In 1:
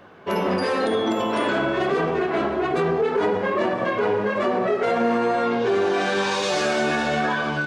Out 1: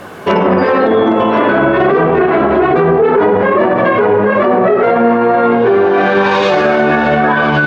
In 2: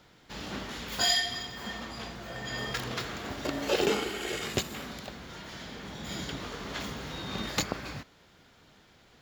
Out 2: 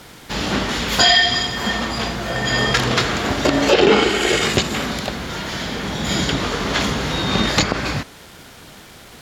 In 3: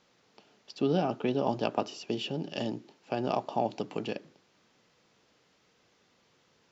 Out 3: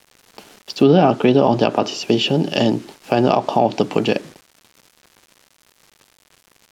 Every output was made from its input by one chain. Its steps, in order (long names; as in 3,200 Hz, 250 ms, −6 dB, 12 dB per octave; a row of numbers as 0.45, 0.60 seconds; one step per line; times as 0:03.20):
bit reduction 10 bits
treble cut that deepens with the level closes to 1,900 Hz, closed at −18.5 dBFS
brickwall limiter −20 dBFS
normalise the peak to −3 dBFS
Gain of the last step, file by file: +17.0, +17.0, +17.0 decibels